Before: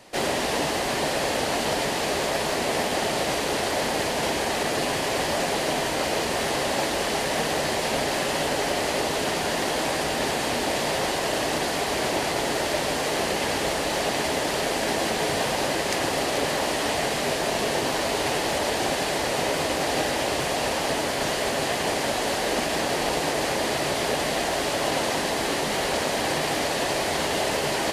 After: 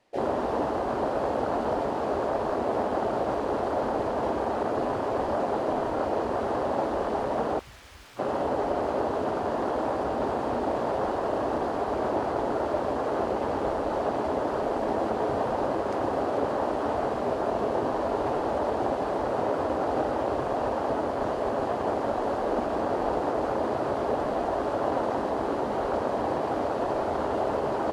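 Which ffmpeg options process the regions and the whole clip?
-filter_complex "[0:a]asettb=1/sr,asplit=3[a][b][c];[a]atrim=end=7.594[d];[b]atrim=start=7.59:end=8.19,asetpts=PTS-STARTPTS,afade=t=in:d=0.004:c=qsin,afade=t=out:st=0.596:d=0.004:c=qsin,lowpass=3.4k,aeval=exprs='(mod(20*val(0)+1,2)-1)/20':c=same[e];[c]atrim=start=8.186[f];[d][e]acrossfade=d=0.004:c1=hsin:c2=qsin[g];[g][f]acrossfade=d=0.004:c1=qsin:c2=hsin,lowpass=f=3k:p=1,afwtdn=0.0447,equalizer=f=160:w=5.1:g=-11"

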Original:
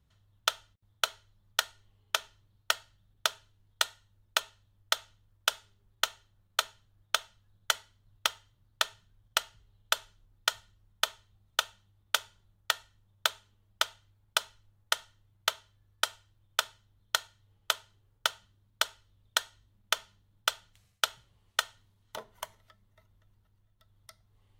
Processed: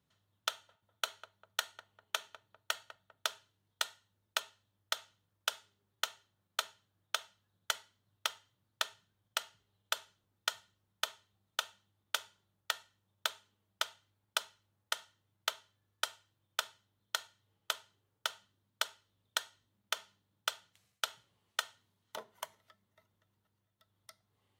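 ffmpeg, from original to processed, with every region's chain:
-filter_complex "[0:a]asettb=1/sr,asplit=3[a][b][c];[a]atrim=end=0.494[d];[b]atrim=start=0.49:end=3.26,asetpts=PTS-STARTPTS,afade=t=in:d=0.004:c=qsin,afade=t=out:st=2.766:d=0.004:c=qsin,bandreject=f=5.1k:w=12,asplit=2[e][f];[f]adelay=199,lowpass=f=1k:p=1,volume=-15.5dB,asplit=2[g][h];[h]adelay=199,lowpass=f=1k:p=1,volume=0.51,asplit=2[i][j];[j]adelay=199,lowpass=f=1k:p=1,volume=0.51,asplit=2[k][l];[l]adelay=199,lowpass=f=1k:p=1,volume=0.51,asplit=2[m][n];[n]adelay=199,lowpass=f=1k:p=1,volume=0.51[o];[e][g][i][k][m][o]amix=inputs=6:normalize=0,atrim=end_sample=122157[p];[c]atrim=start=3.256[q];[d][p]acrossfade=d=0.004:c1=hsin:c2=qsin[r];[r][q]acrossfade=d=0.004:c1=qsin:c2=hsin,highpass=170,alimiter=limit=-11dB:level=0:latency=1:release=52,volume=-3dB"

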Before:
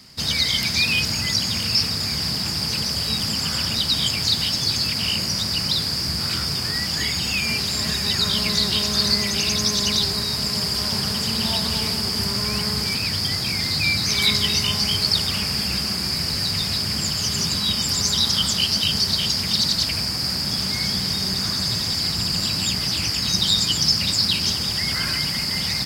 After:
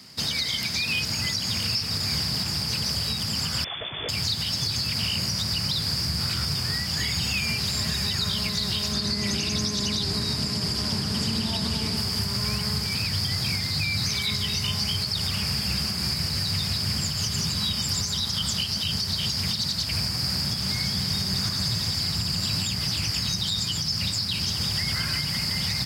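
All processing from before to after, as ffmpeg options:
-filter_complex "[0:a]asettb=1/sr,asplit=3[a][b][c];[a]atrim=end=3.644[d];[b]atrim=start=3.64:end=4.09,asetpts=PTS-STARTPTS,afade=t=in:d=0.004:c=qsin,afade=t=out:st=0.446:d=0.004:c=qsin,asoftclip=type=hard:threshold=-24dB,lowpass=f=3.1k:t=q:w=0.5098,lowpass=f=3.1k:t=q:w=0.6013,lowpass=f=3.1k:t=q:w=0.9,lowpass=f=3.1k:t=q:w=2.563,afreqshift=-3600[e];[c]atrim=start=4.086[f];[d][e]acrossfade=d=0.004:c1=hsin:c2=qsin[g];[g][f]acrossfade=d=0.004:c1=qsin:c2=hsin,asettb=1/sr,asplit=3[h][i][j];[h]atrim=end=8.924[k];[i]atrim=start=8.92:end=11.97,asetpts=PTS-STARTPTS,afade=t=in:d=0.004:c=qsin,afade=t=out:st=3.046:d=0.004:c=qsin,lowpass=11k,equalizer=f=290:t=o:w=1:g=9[l];[j]atrim=start=11.966[m];[k][l]acrossfade=d=0.004:c1=hsin:c2=qsin[n];[n][m]acrossfade=d=0.004:c1=qsin:c2=hsin,highpass=98,asubboost=boost=4:cutoff=130,alimiter=limit=-16.5dB:level=0:latency=1:release=226"

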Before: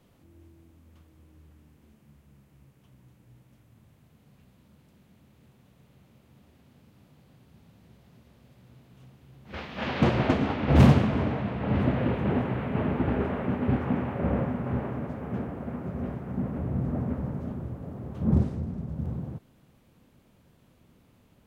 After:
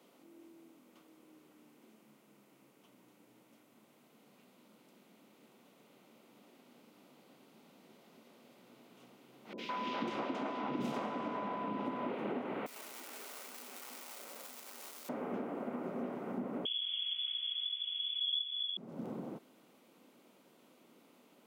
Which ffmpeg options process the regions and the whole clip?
-filter_complex "[0:a]asettb=1/sr,asplit=3[a][b][c];[a]atrim=end=9.534[d];[b]atrim=start=9.53:end=12.09,asetpts=PTS-STARTPTS,afade=t=in:d=0.004:c=qsin,afade=t=out:st=2.556:d=0.004:c=qsin,bandreject=f=4.3k:w=18,aeval=exprs='val(0)+0.0178*sin(2*PI*1000*n/s)':c=same,acrossover=split=450|2300[e][f][g];[g]adelay=50[h];[f]adelay=160[i];[e][i][h]amix=inputs=3:normalize=0,atrim=end_sample=112896[j];[c]atrim=start=12.086[k];[d][j]acrossfade=d=0.004:c1=hsin:c2=qsin[l];[l][k]acrossfade=d=0.004:c1=qsin:c2=hsin,asettb=1/sr,asplit=3[m][n][o];[m]atrim=end=12.664[p];[n]atrim=start=12.66:end=15.09,asetpts=PTS-STARTPTS,afade=t=in:d=0.004:c=qsin,afade=t=out:st=2.426:d=0.004:c=qsin,aeval=exprs='val(0)+0.5*0.0282*sgn(val(0))':c=same,aderivative,flanger=delay=4:depth=5.5:regen=-67:speed=1.1:shape=sinusoidal[q];[o]atrim=start=15.086[r];[p][q]acrossfade=d=0.004:c1=hsin:c2=qsin[s];[s][r]acrossfade=d=0.004:c1=qsin:c2=hsin,asettb=1/sr,asplit=3[t][u][v];[t]atrim=end=16.654[w];[u]atrim=start=16.65:end=18.77,asetpts=PTS-STARTPTS,afade=t=in:d=0.004:c=qsin,afade=t=out:st=2.116:d=0.004:c=qsin,asubboost=boost=5.5:cutoff=190,lowpass=f=3k:t=q:w=0.5098,lowpass=f=3k:t=q:w=0.6013,lowpass=f=3k:t=q:w=0.9,lowpass=f=3k:t=q:w=2.563,afreqshift=-3500,acrossover=split=2300[x][y];[x]adelay=160[z];[z][y]amix=inputs=2:normalize=0,atrim=end_sample=93492[aa];[v]atrim=start=18.766[ab];[w][aa]acrossfade=d=0.004:c1=hsin:c2=qsin[ac];[ac][ab]acrossfade=d=0.004:c1=qsin:c2=hsin,highpass=f=250:w=0.5412,highpass=f=250:w=1.3066,bandreject=f=1.7k:w=8.5,acompressor=threshold=-37dB:ratio=6,volume=1.5dB"

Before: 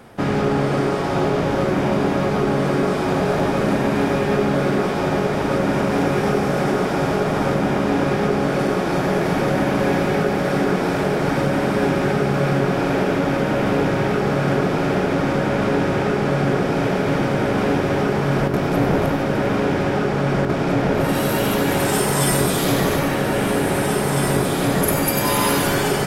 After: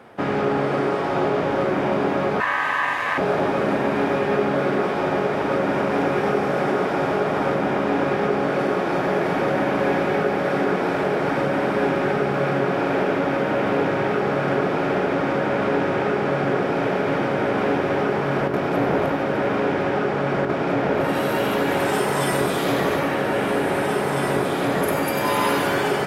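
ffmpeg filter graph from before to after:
-filter_complex "[0:a]asettb=1/sr,asplit=3[a][b][c];[a]atrim=end=2.404[d];[b]atrim=start=2.4:end=3.18,asetpts=PTS-STARTPTS,afade=t=in:d=0.004:c=qsin,afade=t=out:st=0.776:d=0.004:c=qsin,highshelf=f=5.3k:g=7,aeval=exprs='val(0)*sin(2*PI*1400*n/s)':c=same[e];[c]atrim=start=3.176[f];[d][e]acrossfade=d=0.004:c1=hsin:c2=qsin[g];[g][f]acrossfade=d=0.004:c1=qsin:c2=hsin,highpass=67,bass=f=250:g=-8,treble=f=4k:g=-11"

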